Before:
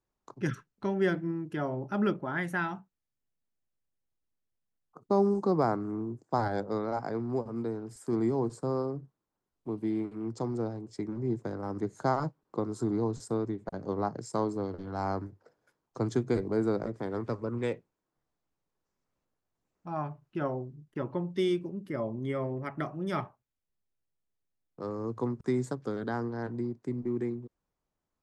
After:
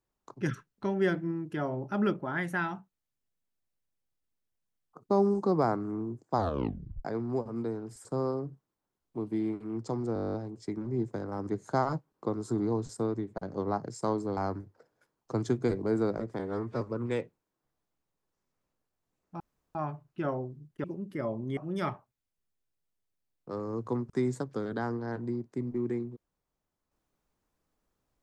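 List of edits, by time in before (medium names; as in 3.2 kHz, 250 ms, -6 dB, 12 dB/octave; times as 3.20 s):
6.35 s: tape stop 0.70 s
8.05–8.56 s: delete
10.65 s: stutter 0.02 s, 11 plays
14.68–15.03 s: delete
17.05–17.33 s: stretch 1.5×
19.92 s: insert room tone 0.35 s
21.01–21.59 s: delete
22.32–22.88 s: delete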